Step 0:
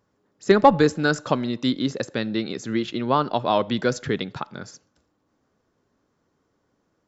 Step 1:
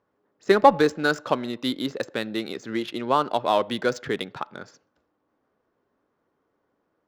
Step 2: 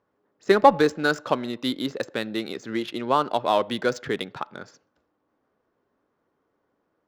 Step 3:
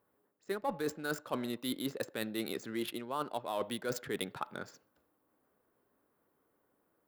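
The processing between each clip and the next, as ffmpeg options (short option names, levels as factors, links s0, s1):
-af "adynamicsmooth=sensitivity=6.5:basefreq=3100,bass=f=250:g=-10,treble=f=4000:g=-1"
-af anull
-af "areverse,acompressor=threshold=0.0355:ratio=8,areverse,aexciter=amount=7.4:drive=3:freq=8500,volume=0.668"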